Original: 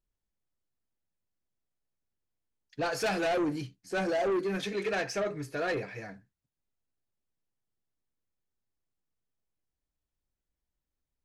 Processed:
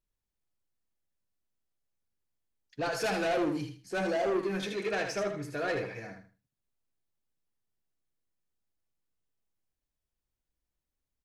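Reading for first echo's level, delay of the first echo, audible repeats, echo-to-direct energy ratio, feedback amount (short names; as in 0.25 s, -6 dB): -6.5 dB, 78 ms, 3, -6.0 dB, 24%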